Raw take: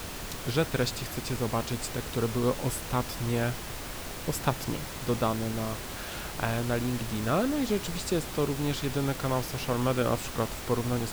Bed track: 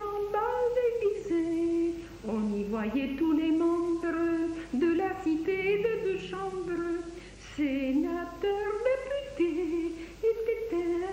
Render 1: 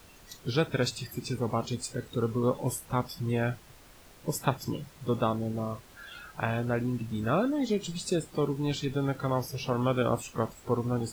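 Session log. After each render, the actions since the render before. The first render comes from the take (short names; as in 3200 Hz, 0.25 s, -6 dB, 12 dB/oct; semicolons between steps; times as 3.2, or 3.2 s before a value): noise print and reduce 16 dB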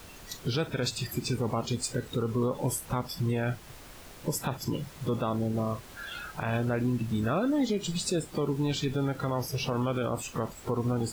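in parallel at 0 dB: compressor, threshold -35 dBFS, peak gain reduction 14.5 dB; on the sum: limiter -19.5 dBFS, peak gain reduction 10 dB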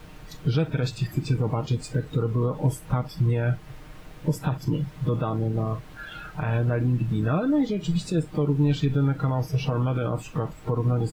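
tone controls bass +7 dB, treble -10 dB; comb 6.5 ms, depth 54%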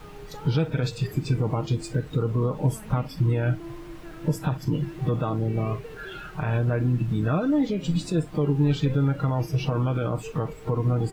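add bed track -13.5 dB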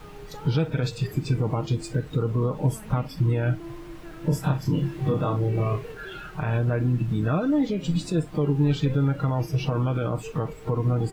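4.29–5.92 doubler 29 ms -2.5 dB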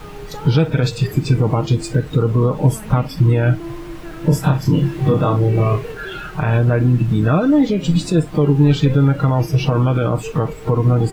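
gain +9 dB; limiter -2 dBFS, peak gain reduction 1.5 dB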